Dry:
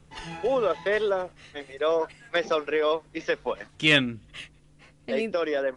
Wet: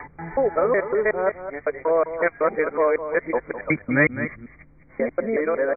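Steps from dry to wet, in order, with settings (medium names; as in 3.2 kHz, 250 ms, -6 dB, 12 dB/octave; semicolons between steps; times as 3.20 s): time reversed locally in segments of 185 ms; brick-wall FIR low-pass 2.4 kHz; on a send: delay 207 ms -11 dB; on the sum: trim +4.5 dB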